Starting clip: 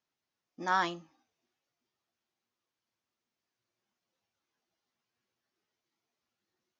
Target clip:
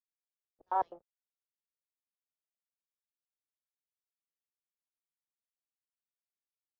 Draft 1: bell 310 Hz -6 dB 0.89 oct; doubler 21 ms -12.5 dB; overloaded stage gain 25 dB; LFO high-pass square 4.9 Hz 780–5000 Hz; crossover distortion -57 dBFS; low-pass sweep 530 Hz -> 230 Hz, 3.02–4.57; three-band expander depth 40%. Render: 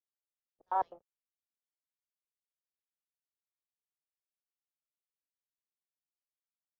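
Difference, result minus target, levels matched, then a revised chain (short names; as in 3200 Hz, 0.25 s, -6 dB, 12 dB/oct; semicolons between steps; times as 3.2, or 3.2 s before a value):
250 Hz band -2.5 dB
doubler 21 ms -12.5 dB; overloaded stage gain 25 dB; LFO high-pass square 4.9 Hz 780–5000 Hz; crossover distortion -57 dBFS; low-pass sweep 530 Hz -> 230 Hz, 3.02–4.57; three-band expander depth 40%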